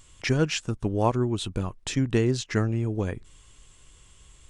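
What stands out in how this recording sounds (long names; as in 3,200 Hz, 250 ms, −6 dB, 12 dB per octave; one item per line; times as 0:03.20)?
background noise floor −56 dBFS
spectral slope −6.0 dB per octave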